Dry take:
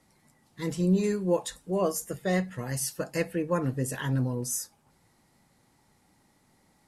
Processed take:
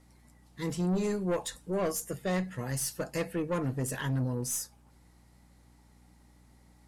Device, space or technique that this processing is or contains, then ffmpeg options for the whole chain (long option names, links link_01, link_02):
valve amplifier with mains hum: -af "aeval=exprs='(tanh(17.8*val(0)+0.2)-tanh(0.2))/17.8':channel_layout=same,aeval=exprs='val(0)+0.00112*(sin(2*PI*60*n/s)+sin(2*PI*2*60*n/s)/2+sin(2*PI*3*60*n/s)/3+sin(2*PI*4*60*n/s)/4+sin(2*PI*5*60*n/s)/5)':channel_layout=same"